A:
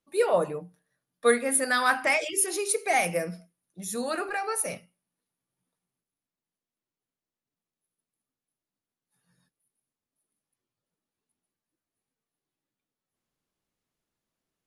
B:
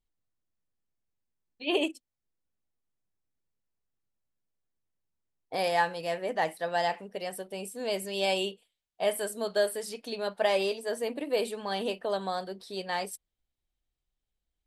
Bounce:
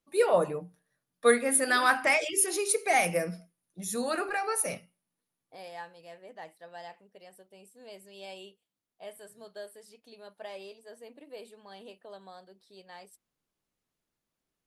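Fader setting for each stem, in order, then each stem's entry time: -0.5 dB, -16.5 dB; 0.00 s, 0.00 s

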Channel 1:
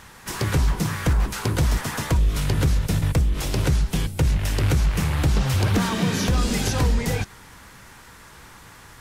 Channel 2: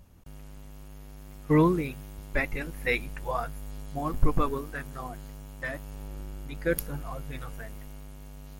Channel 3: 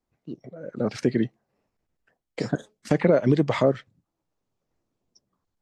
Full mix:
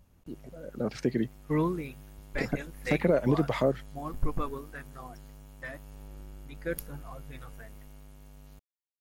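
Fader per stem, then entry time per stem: mute, -6.5 dB, -5.5 dB; mute, 0.00 s, 0.00 s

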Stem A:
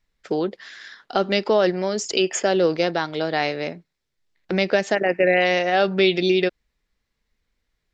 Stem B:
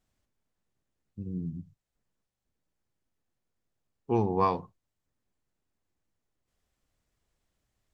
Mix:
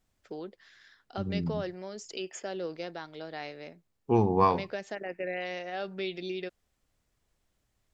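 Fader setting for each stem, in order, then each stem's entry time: -17.0 dB, +2.5 dB; 0.00 s, 0.00 s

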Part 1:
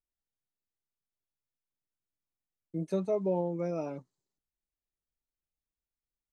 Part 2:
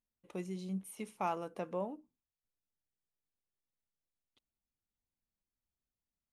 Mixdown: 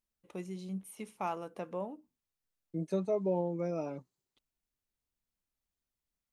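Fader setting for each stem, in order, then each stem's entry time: -1.5 dB, -0.5 dB; 0.00 s, 0.00 s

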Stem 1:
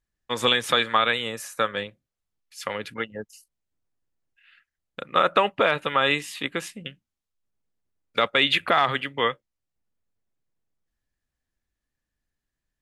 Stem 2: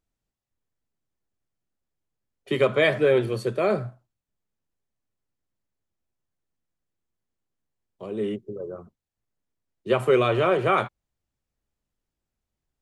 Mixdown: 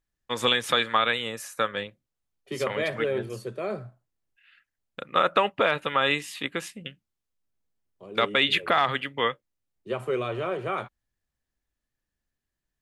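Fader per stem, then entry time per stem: -2.0 dB, -8.5 dB; 0.00 s, 0.00 s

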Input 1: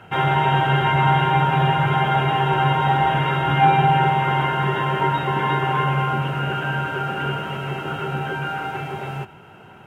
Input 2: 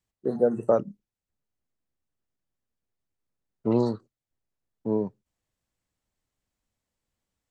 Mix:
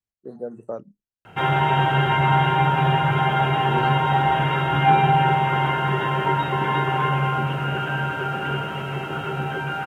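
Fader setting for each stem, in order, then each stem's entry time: -1.0 dB, -10.0 dB; 1.25 s, 0.00 s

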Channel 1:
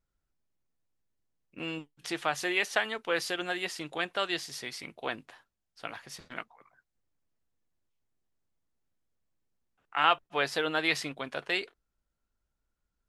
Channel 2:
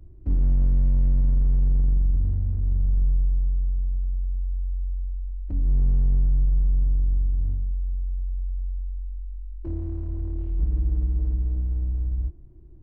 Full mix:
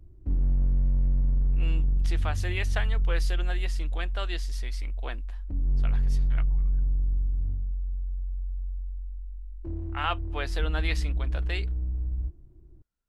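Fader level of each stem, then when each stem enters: -5.0 dB, -4.0 dB; 0.00 s, 0.00 s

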